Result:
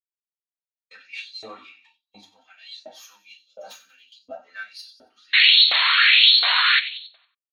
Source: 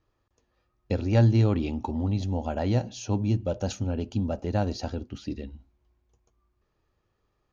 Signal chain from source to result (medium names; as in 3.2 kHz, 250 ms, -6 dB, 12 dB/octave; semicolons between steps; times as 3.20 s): tracing distortion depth 0.099 ms; simulated room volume 200 m³, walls furnished, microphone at 6 m; painted sound noise, 5.33–6.80 s, 470–4400 Hz -10 dBFS; peaking EQ 570 Hz -13 dB 2 oct; band-stop 840 Hz, Q 12; on a send: feedback delay 92 ms, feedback 55%, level -11 dB; on the sum: LFO high-pass saw up 1.4 Hz 610–5300 Hz; peaking EQ 120 Hz -12 dB 0.76 oct; in parallel at -1 dB: compression, threshold -21 dBFS, peak gain reduction 15.5 dB; on the sum: expander -38 dBFS; spectral contrast expander 1.5:1; trim -7 dB